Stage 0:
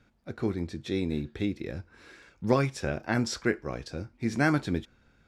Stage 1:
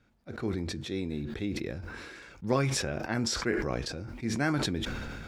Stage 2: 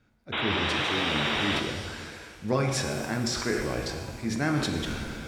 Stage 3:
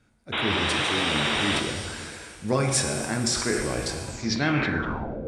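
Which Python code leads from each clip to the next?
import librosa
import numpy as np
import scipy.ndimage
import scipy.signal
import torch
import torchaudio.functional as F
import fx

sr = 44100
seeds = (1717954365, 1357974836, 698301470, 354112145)

y1 = fx.sustainer(x, sr, db_per_s=24.0)
y1 = y1 * librosa.db_to_amplitude(-4.5)
y2 = fx.spec_paint(y1, sr, seeds[0], shape='noise', start_s=0.32, length_s=1.28, low_hz=280.0, high_hz=3900.0, level_db=-30.0)
y2 = fx.rev_shimmer(y2, sr, seeds[1], rt60_s=1.7, semitones=7, shimmer_db=-8, drr_db=4.0)
y3 = fx.filter_sweep_lowpass(y2, sr, from_hz=9200.0, to_hz=500.0, start_s=4.07, end_s=5.23, q=4.7)
y3 = y3 * librosa.db_to_amplitude(2.0)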